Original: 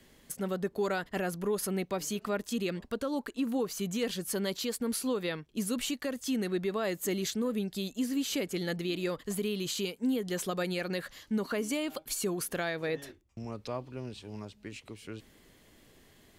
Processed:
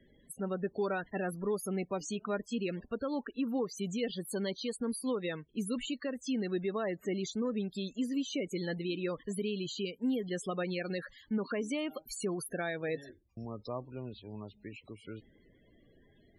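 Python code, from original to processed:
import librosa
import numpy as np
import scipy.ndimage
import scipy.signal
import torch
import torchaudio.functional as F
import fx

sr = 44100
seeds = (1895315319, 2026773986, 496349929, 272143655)

y = fx.median_filter(x, sr, points=9, at=(6.76, 7.18))
y = fx.spec_topn(y, sr, count=32)
y = y * librosa.db_to_amplitude(-2.0)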